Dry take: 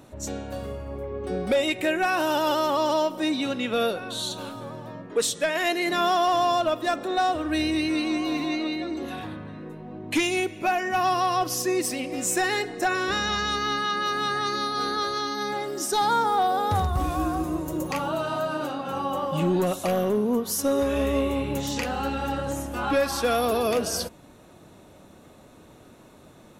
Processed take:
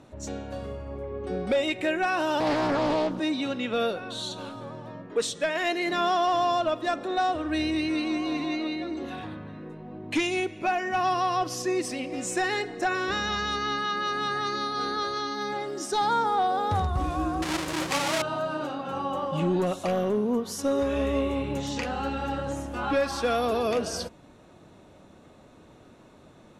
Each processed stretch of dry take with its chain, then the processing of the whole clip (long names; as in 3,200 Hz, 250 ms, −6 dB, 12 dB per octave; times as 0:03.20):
0:02.40–0:03.20: low shelf with overshoot 320 Hz +10 dB, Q 1.5 + highs frequency-modulated by the lows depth 0.53 ms
0:17.42–0:18.22: each half-wave held at its own peak + spectral tilt +2.5 dB per octave
whole clip: low-pass filter 9,000 Hz 12 dB per octave; high-shelf EQ 7,100 Hz −6.5 dB; level −2 dB